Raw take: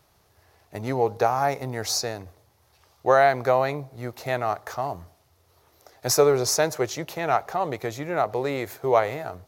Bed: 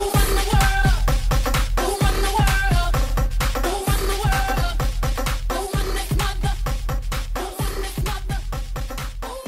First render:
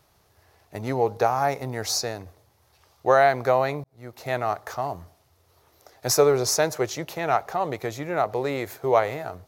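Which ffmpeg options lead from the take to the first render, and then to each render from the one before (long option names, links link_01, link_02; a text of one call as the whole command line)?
ffmpeg -i in.wav -filter_complex "[0:a]asplit=2[link_01][link_02];[link_01]atrim=end=3.84,asetpts=PTS-STARTPTS,afade=type=out:start_time=3.836:duration=0.004:curve=hsin[link_03];[link_02]atrim=start=3.84,asetpts=PTS-STARTPTS,afade=type=in:duration=0.52[link_04];[link_03][link_04]concat=n=2:v=0:a=1" out.wav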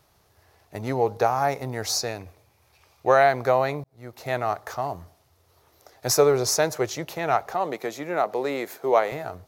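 ffmpeg -i in.wav -filter_complex "[0:a]asettb=1/sr,asplit=3[link_01][link_02][link_03];[link_01]atrim=end=2.084[link_04];[link_02]atrim=start=2.08:end=3.23,asetpts=PTS-STARTPTS,afade=type=in:duration=0.004:curve=qsin,afade=type=out:start_time=1.146:duration=0.004:curve=qsin,equalizer=frequency=2400:width_type=o:width=0.21:gain=11[link_05];[link_03]atrim=start=3.226[link_06];[link_04][link_05]acrossfade=duration=0.004:curve1=hsin:curve2=qsin[link_07];[link_07][link_06]acrossfade=duration=0.004:curve1=qsin:curve2=hsin,asettb=1/sr,asplit=3[link_08][link_09][link_10];[link_08]atrim=end=7.544[link_11];[link_09]atrim=start=7.54:end=9.12,asetpts=PTS-STARTPTS,afade=type=in:duration=0.004:curve=qsin,afade=type=out:start_time=1.576:duration=0.004:curve=qsin,highpass=frequency=180:width=0.5412,highpass=frequency=180:width=1.3066[link_12];[link_10]atrim=start=9.116[link_13];[link_11][link_12]acrossfade=duration=0.004:curve1=hsin:curve2=qsin[link_14];[link_14][link_13]acrossfade=duration=0.004:curve1=qsin:curve2=hsin" out.wav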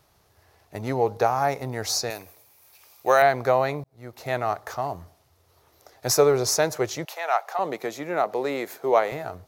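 ffmpeg -i in.wav -filter_complex "[0:a]asettb=1/sr,asplit=3[link_01][link_02][link_03];[link_01]atrim=end=2.104[link_04];[link_02]atrim=start=2.1:end=3.22,asetpts=PTS-STARTPTS,afade=type=in:duration=0.004:curve=qsin,afade=type=out:start_time=1.116:duration=0.004:curve=qsin,aemphasis=mode=production:type=bsi[link_05];[link_03]atrim=start=3.216[link_06];[link_04][link_05]acrossfade=duration=0.004:curve1=hsin:curve2=qsin[link_07];[link_07][link_06]acrossfade=duration=0.004:curve1=qsin:curve2=hsin,asettb=1/sr,asplit=3[link_08][link_09][link_10];[link_08]atrim=end=7.054[link_11];[link_09]atrim=start=7.05:end=7.59,asetpts=PTS-STARTPTS,afade=type=in:duration=0.004:curve=qsin,afade=type=out:start_time=0.536:duration=0.004:curve=qsin,highpass=frequency=600:width=0.5412,highpass=frequency=600:width=1.3066[link_12];[link_10]atrim=start=7.586[link_13];[link_11][link_12]acrossfade=duration=0.004:curve1=hsin:curve2=qsin[link_14];[link_14][link_13]acrossfade=duration=0.004:curve1=qsin:curve2=hsin" out.wav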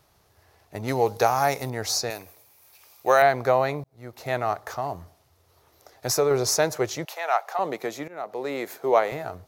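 ffmpeg -i in.wav -filter_complex "[0:a]asettb=1/sr,asplit=3[link_01][link_02][link_03];[link_01]atrim=end=0.884[link_04];[link_02]atrim=start=0.88:end=1.7,asetpts=PTS-STARTPTS,afade=type=in:duration=0.004:curve=qsin,afade=type=out:start_time=0.816:duration=0.004:curve=qsin,highshelf=frequency=2900:gain=11.5[link_05];[link_03]atrim=start=1.696[link_06];[link_04][link_05]acrossfade=duration=0.004:curve1=hsin:curve2=qsin[link_07];[link_07][link_06]acrossfade=duration=0.004:curve1=qsin:curve2=hsin,asettb=1/sr,asplit=3[link_08][link_09][link_10];[link_08]atrim=end=4.704[link_11];[link_09]atrim=start=4.7:end=6.31,asetpts=PTS-STARTPTS,afade=type=in:duration=0.004:curve=qsin,afade=type=out:start_time=1.606:duration=0.004:curve=qsin,acompressor=threshold=-24dB:ratio=1.5:attack=3.2:release=140:knee=1:detection=peak[link_12];[link_10]atrim=start=6.306[link_13];[link_11][link_12]acrossfade=duration=0.004:curve1=hsin:curve2=qsin[link_14];[link_14][link_13]acrossfade=duration=0.004:curve1=qsin:curve2=hsin,asplit=2[link_15][link_16];[link_15]atrim=end=8.08,asetpts=PTS-STARTPTS,afade=type=out:start_time=8.076:duration=0.004:curve=hsin:silence=0.105925[link_17];[link_16]atrim=start=8.08,asetpts=PTS-STARTPTS,afade=type=in:duration=0.59:silence=0.105925[link_18];[link_17][link_18]concat=n=2:v=0:a=1" out.wav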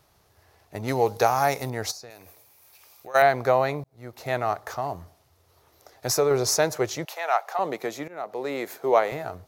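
ffmpeg -i in.wav -filter_complex "[0:a]asplit=3[link_01][link_02][link_03];[link_01]afade=type=out:start_time=1.9:duration=0.02[link_04];[link_02]acompressor=threshold=-44dB:ratio=3:attack=3.2:release=140:knee=1:detection=peak,afade=type=in:start_time=1.9:duration=0.02,afade=type=out:start_time=3.14:duration=0.02[link_05];[link_03]afade=type=in:start_time=3.14:duration=0.02[link_06];[link_04][link_05][link_06]amix=inputs=3:normalize=0" out.wav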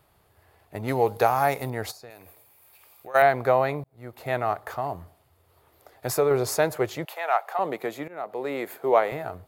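ffmpeg -i in.wav -af "equalizer=frequency=5800:width_type=o:width=0.49:gain=-14,bandreject=frequency=4000:width=20" out.wav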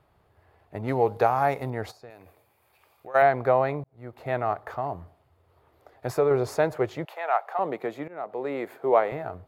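ffmpeg -i in.wav -af "lowpass=frequency=1800:poles=1" out.wav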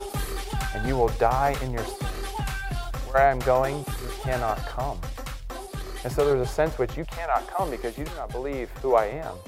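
ffmpeg -i in.wav -i bed.wav -filter_complex "[1:a]volume=-12dB[link_01];[0:a][link_01]amix=inputs=2:normalize=0" out.wav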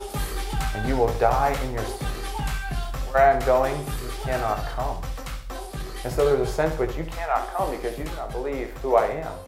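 ffmpeg -i in.wav -filter_complex "[0:a]asplit=2[link_01][link_02];[link_02]adelay=19,volume=-6.5dB[link_03];[link_01][link_03]amix=inputs=2:normalize=0,aecho=1:1:68|136|204|272:0.316|0.12|0.0457|0.0174" out.wav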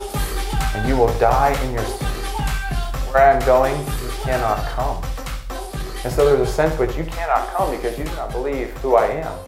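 ffmpeg -i in.wav -af "volume=5.5dB,alimiter=limit=-3dB:level=0:latency=1" out.wav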